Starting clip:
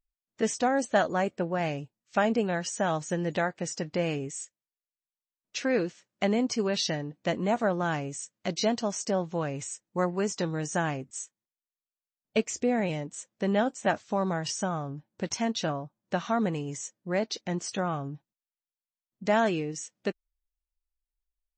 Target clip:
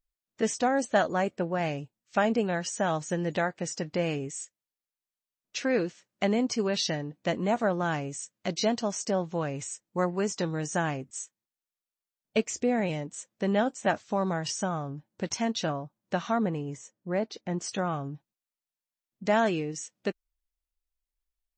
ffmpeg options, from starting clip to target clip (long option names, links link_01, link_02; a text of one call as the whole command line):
ffmpeg -i in.wav -filter_complex "[0:a]asettb=1/sr,asplit=3[link_01][link_02][link_03];[link_01]atrim=end=16.384[link_04];[link_02]atrim=start=16.38:end=17.61,asetpts=PTS-STARTPTS,afade=type=in:duration=0.004:curve=qsin,afade=type=out:start_time=1.226:duration=0.004:curve=qsin,highshelf=frequency=2400:gain=-11[link_05];[link_03]atrim=start=17.606[link_06];[link_04][link_05]acrossfade=duration=0.004:curve1=hsin:curve2=qsin[link_07];[link_07][link_06]acrossfade=duration=0.004:curve1=qsin:curve2=hsin" out.wav